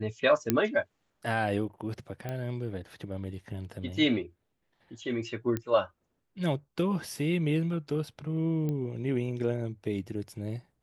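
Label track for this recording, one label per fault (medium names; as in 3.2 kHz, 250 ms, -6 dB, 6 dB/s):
0.500000	0.500000	pop -9 dBFS
2.290000	2.290000	pop -22 dBFS
5.570000	5.570000	pop -18 dBFS
8.690000	8.690000	pop -22 dBFS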